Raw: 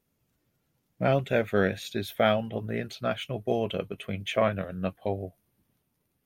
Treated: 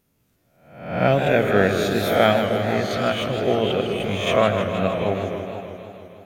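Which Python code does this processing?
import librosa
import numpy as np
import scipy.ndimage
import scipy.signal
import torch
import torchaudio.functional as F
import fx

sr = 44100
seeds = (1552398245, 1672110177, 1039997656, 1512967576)

y = fx.spec_swells(x, sr, rise_s=0.66)
y = fx.echo_stepped(y, sr, ms=245, hz=320.0, octaves=1.4, feedback_pct=70, wet_db=-6)
y = fx.echo_warbled(y, sr, ms=157, feedback_pct=72, rate_hz=2.8, cents=165, wet_db=-8.5)
y = y * 10.0 ** (5.0 / 20.0)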